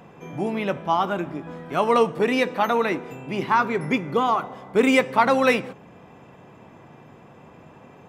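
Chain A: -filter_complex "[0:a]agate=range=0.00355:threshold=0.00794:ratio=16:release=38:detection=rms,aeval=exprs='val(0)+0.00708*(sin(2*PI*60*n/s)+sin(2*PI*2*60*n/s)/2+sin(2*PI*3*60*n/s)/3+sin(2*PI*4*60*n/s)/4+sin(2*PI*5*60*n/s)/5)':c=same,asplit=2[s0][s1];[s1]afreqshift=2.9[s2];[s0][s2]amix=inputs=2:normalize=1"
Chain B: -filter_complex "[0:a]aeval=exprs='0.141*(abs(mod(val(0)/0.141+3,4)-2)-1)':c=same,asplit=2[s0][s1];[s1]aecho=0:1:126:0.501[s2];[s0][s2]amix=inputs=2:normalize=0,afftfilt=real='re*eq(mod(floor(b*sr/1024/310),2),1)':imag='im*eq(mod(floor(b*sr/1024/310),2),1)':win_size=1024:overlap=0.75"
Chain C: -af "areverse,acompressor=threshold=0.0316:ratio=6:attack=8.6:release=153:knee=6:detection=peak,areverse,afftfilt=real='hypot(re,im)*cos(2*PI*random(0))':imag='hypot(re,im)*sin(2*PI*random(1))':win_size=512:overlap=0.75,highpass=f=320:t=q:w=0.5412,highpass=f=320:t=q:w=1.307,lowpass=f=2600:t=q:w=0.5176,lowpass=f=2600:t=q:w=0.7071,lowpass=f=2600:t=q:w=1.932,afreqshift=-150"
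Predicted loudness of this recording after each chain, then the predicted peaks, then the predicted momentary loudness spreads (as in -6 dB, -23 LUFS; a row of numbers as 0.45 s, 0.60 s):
-25.5 LUFS, -27.5 LUFS, -41.5 LUFS; -7.5 dBFS, -13.5 dBFS, -24.5 dBFS; 11 LU, 9 LU, 18 LU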